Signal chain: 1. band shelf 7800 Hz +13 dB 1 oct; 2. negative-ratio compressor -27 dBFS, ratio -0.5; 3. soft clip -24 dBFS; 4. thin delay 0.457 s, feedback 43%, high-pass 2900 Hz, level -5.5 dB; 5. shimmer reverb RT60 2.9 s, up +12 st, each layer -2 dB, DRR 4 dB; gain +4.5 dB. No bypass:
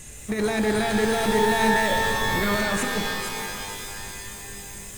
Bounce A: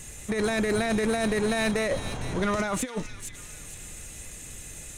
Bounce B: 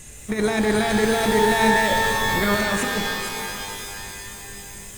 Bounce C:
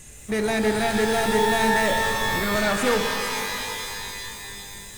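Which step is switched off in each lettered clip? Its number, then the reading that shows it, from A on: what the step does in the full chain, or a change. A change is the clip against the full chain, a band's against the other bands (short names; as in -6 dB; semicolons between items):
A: 5, 1 kHz band -6.0 dB; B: 3, distortion -13 dB; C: 2, momentary loudness spread change -2 LU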